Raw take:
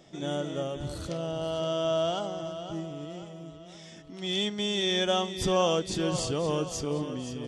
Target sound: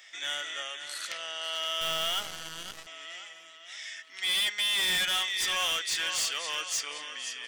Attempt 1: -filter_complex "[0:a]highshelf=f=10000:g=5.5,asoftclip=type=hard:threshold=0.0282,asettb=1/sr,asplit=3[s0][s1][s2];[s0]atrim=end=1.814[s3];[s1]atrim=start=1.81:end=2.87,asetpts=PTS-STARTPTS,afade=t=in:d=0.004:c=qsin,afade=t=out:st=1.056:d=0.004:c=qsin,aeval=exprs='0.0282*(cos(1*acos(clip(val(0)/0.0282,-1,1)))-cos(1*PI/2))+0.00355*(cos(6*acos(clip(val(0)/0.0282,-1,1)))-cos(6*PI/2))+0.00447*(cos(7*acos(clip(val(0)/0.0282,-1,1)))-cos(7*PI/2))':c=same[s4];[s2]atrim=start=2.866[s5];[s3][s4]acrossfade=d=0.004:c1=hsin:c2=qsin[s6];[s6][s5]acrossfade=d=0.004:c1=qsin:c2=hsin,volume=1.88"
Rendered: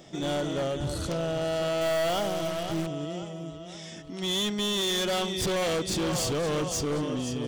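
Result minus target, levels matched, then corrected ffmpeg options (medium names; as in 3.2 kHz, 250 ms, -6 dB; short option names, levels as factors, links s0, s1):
2 kHz band -5.5 dB
-filter_complex "[0:a]highpass=f=1900:t=q:w=3.3,highshelf=f=10000:g=5.5,asoftclip=type=hard:threshold=0.0282,asettb=1/sr,asplit=3[s0][s1][s2];[s0]atrim=end=1.814[s3];[s1]atrim=start=1.81:end=2.87,asetpts=PTS-STARTPTS,afade=t=in:d=0.004:c=qsin,afade=t=out:st=1.056:d=0.004:c=qsin,aeval=exprs='0.0282*(cos(1*acos(clip(val(0)/0.0282,-1,1)))-cos(1*PI/2))+0.00355*(cos(6*acos(clip(val(0)/0.0282,-1,1)))-cos(6*PI/2))+0.00447*(cos(7*acos(clip(val(0)/0.0282,-1,1)))-cos(7*PI/2))':c=same[s4];[s2]atrim=start=2.866[s5];[s3][s4]acrossfade=d=0.004:c1=hsin:c2=qsin[s6];[s6][s5]acrossfade=d=0.004:c1=qsin:c2=hsin,volume=1.88"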